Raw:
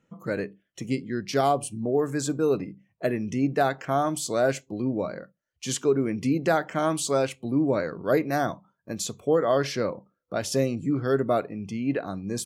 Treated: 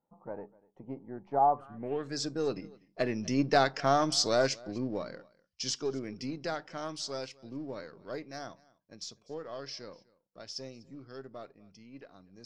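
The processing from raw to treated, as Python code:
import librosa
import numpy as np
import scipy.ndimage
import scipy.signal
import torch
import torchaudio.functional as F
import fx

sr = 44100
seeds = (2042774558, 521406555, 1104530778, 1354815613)

p1 = np.where(x < 0.0, 10.0 ** (-3.0 / 20.0) * x, x)
p2 = fx.doppler_pass(p1, sr, speed_mps=5, closest_m=3.7, pass_at_s=3.79)
p3 = fx.low_shelf(p2, sr, hz=200.0, db=-4.0)
p4 = p3 + fx.echo_single(p3, sr, ms=247, db=-23.5, dry=0)
y = fx.filter_sweep_lowpass(p4, sr, from_hz=850.0, to_hz=5200.0, start_s=1.49, end_s=2.16, q=6.9)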